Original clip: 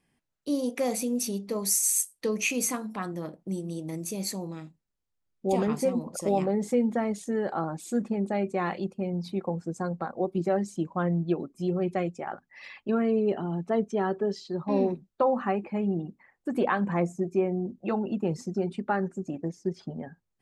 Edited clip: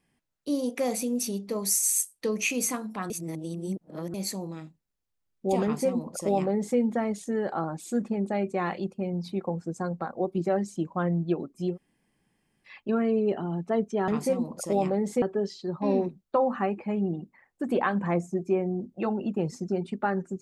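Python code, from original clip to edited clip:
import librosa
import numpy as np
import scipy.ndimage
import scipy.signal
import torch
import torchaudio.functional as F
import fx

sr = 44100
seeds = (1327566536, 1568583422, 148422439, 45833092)

y = fx.edit(x, sr, fx.reverse_span(start_s=3.1, length_s=1.04),
    fx.duplicate(start_s=5.64, length_s=1.14, to_s=14.08),
    fx.room_tone_fill(start_s=11.73, length_s=0.96, crossfade_s=0.1), tone=tone)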